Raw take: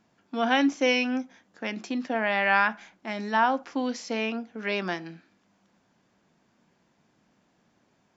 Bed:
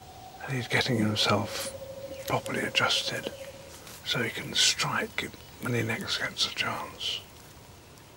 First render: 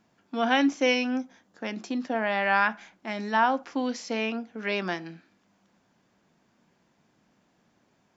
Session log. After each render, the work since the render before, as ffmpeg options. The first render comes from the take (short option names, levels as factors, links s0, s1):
-filter_complex "[0:a]asettb=1/sr,asplit=3[s0][s1][s2];[s0]atrim=end=0.944[s3];[s1]atrim=start=0.94:end=2.62,asetpts=PTS-STARTPTS,afade=t=in:d=0.004:c=qsin,afade=t=out:st=1.676:d=0.004:c=qsin,equalizer=f=2300:w=1.5:g=-4[s4];[s2]atrim=start=2.616[s5];[s3][s4]acrossfade=d=0.004:c1=hsin:c2=qsin[s6];[s6][s5]acrossfade=d=0.004:c1=qsin:c2=hsin"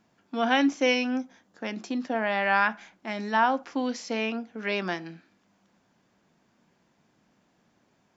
-af anull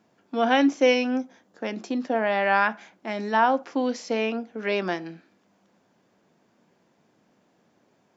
-af "highpass=83,equalizer=f=470:t=o:w=1.5:g=6"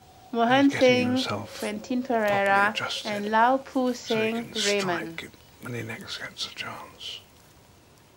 -filter_complex "[1:a]volume=0.562[s0];[0:a][s0]amix=inputs=2:normalize=0"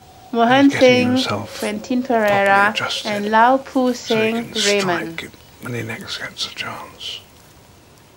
-af "volume=2.51,alimiter=limit=0.891:level=0:latency=1"